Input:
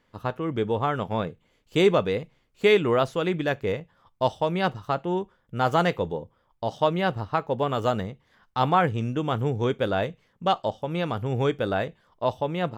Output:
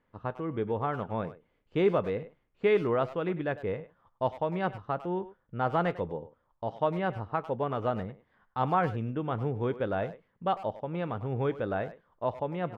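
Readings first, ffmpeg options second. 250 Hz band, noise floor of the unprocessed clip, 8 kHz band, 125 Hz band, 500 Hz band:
-5.5 dB, -68 dBFS, no reading, -5.5 dB, -5.5 dB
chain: -filter_complex "[0:a]lowpass=2000,asplit=2[s0][s1];[s1]adelay=100,highpass=300,lowpass=3400,asoftclip=type=hard:threshold=0.119,volume=0.2[s2];[s0][s2]amix=inputs=2:normalize=0,volume=0.531"

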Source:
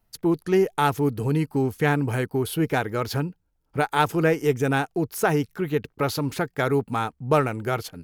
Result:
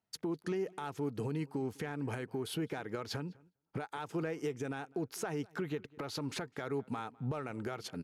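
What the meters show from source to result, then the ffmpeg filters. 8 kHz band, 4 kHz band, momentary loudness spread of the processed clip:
-11.0 dB, -10.5 dB, 5 LU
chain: -filter_complex "[0:a]highpass=140,asplit=2[s0][s1];[s1]asoftclip=type=hard:threshold=0.237,volume=0.376[s2];[s0][s2]amix=inputs=2:normalize=0,acompressor=threshold=0.0562:ratio=6,alimiter=level_in=1.12:limit=0.0631:level=0:latency=1:release=251,volume=0.891,asplit=2[s3][s4];[s4]adelay=203,lowpass=f=3400:p=1,volume=0.0631,asplit=2[s5][s6];[s6]adelay=203,lowpass=f=3400:p=1,volume=0.19[s7];[s3][s5][s7]amix=inputs=3:normalize=0,agate=range=0.251:threshold=0.00126:ratio=16:detection=peak,lowpass=8100,volume=0.75"

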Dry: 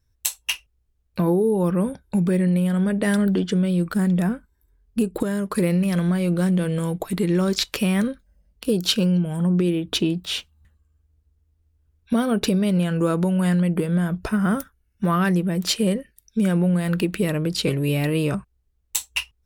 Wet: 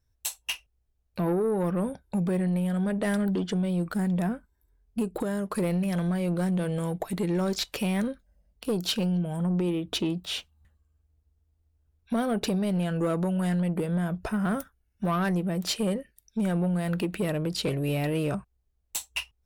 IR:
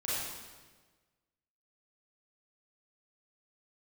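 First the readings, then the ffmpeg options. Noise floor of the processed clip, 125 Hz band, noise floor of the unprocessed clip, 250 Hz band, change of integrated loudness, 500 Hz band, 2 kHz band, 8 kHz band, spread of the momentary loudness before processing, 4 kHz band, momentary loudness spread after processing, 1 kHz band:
-72 dBFS, -6.5 dB, -67 dBFS, -6.5 dB, -6.5 dB, -5.0 dB, -6.5 dB, -7.0 dB, 8 LU, -6.5 dB, 8 LU, -4.0 dB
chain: -af "equalizer=f=700:t=o:w=0.73:g=6,asoftclip=type=tanh:threshold=0.178,volume=0.562"

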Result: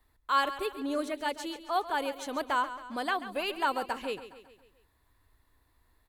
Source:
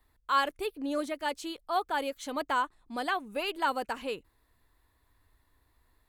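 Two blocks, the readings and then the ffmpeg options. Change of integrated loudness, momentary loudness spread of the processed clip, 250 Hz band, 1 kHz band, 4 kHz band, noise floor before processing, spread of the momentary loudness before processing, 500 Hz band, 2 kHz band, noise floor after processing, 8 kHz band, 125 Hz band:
+0.5 dB, 8 LU, +0.5 dB, +0.5 dB, +0.5 dB, -71 dBFS, 8 LU, +0.5 dB, +0.5 dB, -70 dBFS, +0.5 dB, no reading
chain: -af "aecho=1:1:137|274|411|548|685:0.224|0.119|0.0629|0.0333|0.0177"

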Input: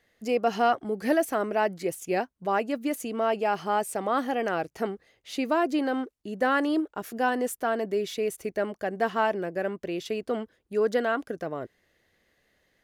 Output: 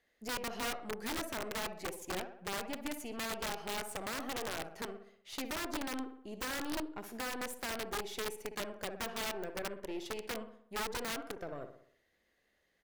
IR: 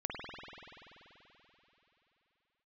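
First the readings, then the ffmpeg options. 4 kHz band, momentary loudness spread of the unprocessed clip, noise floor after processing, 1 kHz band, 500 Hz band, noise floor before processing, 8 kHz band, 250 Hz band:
-1.0 dB, 8 LU, -77 dBFS, -14.0 dB, -15.0 dB, -71 dBFS, -1.0 dB, -13.0 dB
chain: -filter_complex "[0:a]equalizer=f=120:t=o:w=1:g=-7.5,acompressor=threshold=0.0316:ratio=2,aeval=exprs='(tanh(22.4*val(0)+0.7)-tanh(0.7))/22.4':c=same,asplit=2[s0][s1];[s1]adelay=61,lowpass=f=4600:p=1,volume=0.355,asplit=2[s2][s3];[s3]adelay=61,lowpass=f=4600:p=1,volume=0.53,asplit=2[s4][s5];[s5]adelay=61,lowpass=f=4600:p=1,volume=0.53,asplit=2[s6][s7];[s7]adelay=61,lowpass=f=4600:p=1,volume=0.53,asplit=2[s8][s9];[s9]adelay=61,lowpass=f=4600:p=1,volume=0.53,asplit=2[s10][s11];[s11]adelay=61,lowpass=f=4600:p=1,volume=0.53[s12];[s0][s2][s4][s6][s8][s10][s12]amix=inputs=7:normalize=0,aeval=exprs='(mod(21.1*val(0)+1,2)-1)/21.1':c=same,volume=0.631"

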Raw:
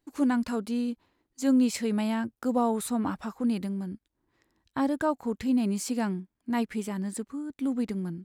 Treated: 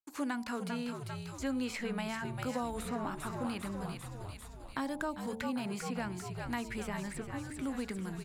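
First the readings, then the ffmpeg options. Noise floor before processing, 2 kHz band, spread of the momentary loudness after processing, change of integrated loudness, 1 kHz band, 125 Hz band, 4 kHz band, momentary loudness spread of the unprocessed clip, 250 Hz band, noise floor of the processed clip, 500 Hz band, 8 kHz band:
-81 dBFS, -0.5 dB, 6 LU, -9.0 dB, -5.5 dB, -2.5 dB, -3.0 dB, 9 LU, -10.5 dB, -48 dBFS, -7.0 dB, -7.5 dB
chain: -filter_complex "[0:a]tiltshelf=f=890:g=-7,agate=range=0.0224:threshold=0.00158:ratio=3:detection=peak,bandreject=f=74.86:t=h:w=4,bandreject=f=149.72:t=h:w=4,bandreject=f=224.58:t=h:w=4,bandreject=f=299.44:t=h:w=4,bandreject=f=374.3:t=h:w=4,bandreject=f=449.16:t=h:w=4,bandreject=f=524.02:t=h:w=4,bandreject=f=598.88:t=h:w=4,bandreject=f=673.74:t=h:w=4,bandreject=f=748.6:t=h:w=4,bandreject=f=823.46:t=h:w=4,bandreject=f=898.32:t=h:w=4,bandreject=f=973.18:t=h:w=4,bandreject=f=1048.04:t=h:w=4,asplit=2[s0][s1];[s1]asplit=7[s2][s3][s4][s5][s6][s7][s8];[s2]adelay=396,afreqshift=-70,volume=0.355[s9];[s3]adelay=792,afreqshift=-140,volume=0.207[s10];[s4]adelay=1188,afreqshift=-210,volume=0.119[s11];[s5]adelay=1584,afreqshift=-280,volume=0.0692[s12];[s6]adelay=1980,afreqshift=-350,volume=0.0403[s13];[s7]adelay=2376,afreqshift=-420,volume=0.0232[s14];[s8]adelay=2772,afreqshift=-490,volume=0.0135[s15];[s9][s10][s11][s12][s13][s14][s15]amix=inputs=7:normalize=0[s16];[s0][s16]amix=inputs=2:normalize=0,acrossover=split=350|2500[s17][s18][s19];[s17]acompressor=threshold=0.0126:ratio=4[s20];[s18]acompressor=threshold=0.0141:ratio=4[s21];[s19]acompressor=threshold=0.00251:ratio=4[s22];[s20][s21][s22]amix=inputs=3:normalize=0"

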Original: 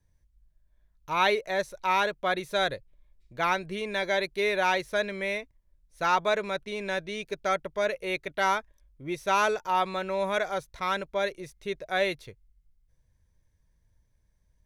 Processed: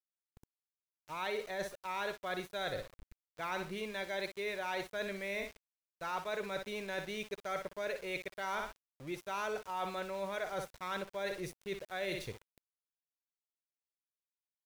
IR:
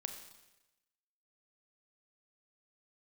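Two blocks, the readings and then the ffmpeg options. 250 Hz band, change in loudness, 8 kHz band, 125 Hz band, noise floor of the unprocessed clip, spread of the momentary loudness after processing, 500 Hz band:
-8.5 dB, -11.0 dB, -8.0 dB, -7.0 dB, -69 dBFS, 6 LU, -10.0 dB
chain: -af "aecho=1:1:61|122|183:0.251|0.0653|0.017,areverse,acompressor=threshold=0.00891:ratio=5,areverse,aeval=exprs='val(0)*gte(abs(val(0)),0.00237)':c=same,volume=1.5"

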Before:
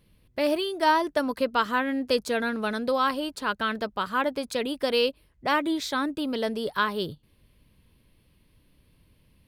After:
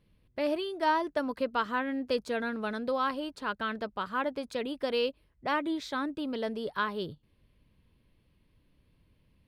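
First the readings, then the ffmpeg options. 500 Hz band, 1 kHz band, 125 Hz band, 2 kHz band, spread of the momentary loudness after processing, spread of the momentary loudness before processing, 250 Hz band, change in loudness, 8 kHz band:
-5.0 dB, -5.5 dB, -5.0 dB, -6.0 dB, 6 LU, 6 LU, -5.0 dB, -5.5 dB, -12.5 dB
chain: -af "lowpass=f=3300:p=1,volume=0.562"

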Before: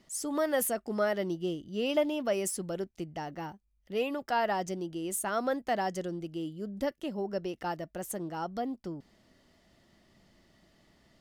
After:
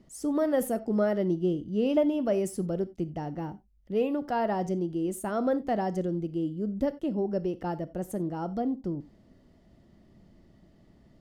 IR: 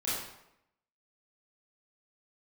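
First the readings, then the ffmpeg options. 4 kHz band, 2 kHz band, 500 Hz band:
-7.0 dB, -5.0 dB, +3.5 dB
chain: -filter_complex "[0:a]tiltshelf=f=730:g=8.5,asplit=2[s0][s1];[1:a]atrim=start_sample=2205,atrim=end_sample=4410[s2];[s1][s2]afir=irnorm=-1:irlink=0,volume=0.119[s3];[s0][s3]amix=inputs=2:normalize=0"

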